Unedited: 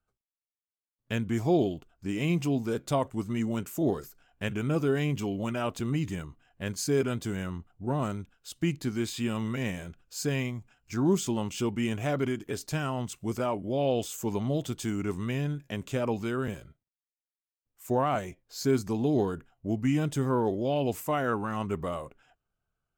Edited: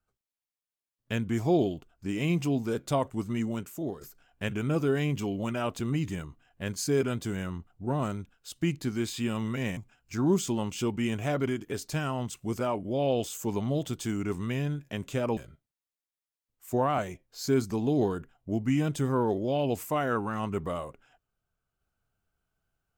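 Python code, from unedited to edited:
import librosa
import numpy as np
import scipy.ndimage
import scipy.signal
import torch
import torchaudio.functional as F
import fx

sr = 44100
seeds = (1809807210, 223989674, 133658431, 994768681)

y = fx.edit(x, sr, fx.fade_out_to(start_s=3.35, length_s=0.66, floor_db=-11.0),
    fx.cut(start_s=9.77, length_s=0.79),
    fx.cut(start_s=16.16, length_s=0.38), tone=tone)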